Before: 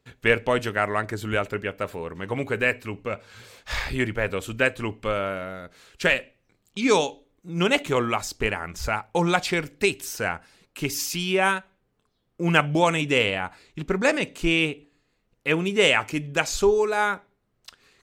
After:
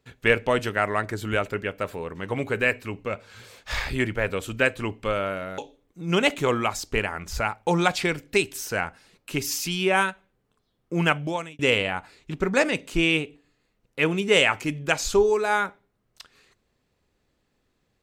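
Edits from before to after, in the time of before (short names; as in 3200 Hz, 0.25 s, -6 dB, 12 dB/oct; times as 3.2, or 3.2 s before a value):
5.58–7.06 cut
12.41–13.07 fade out linear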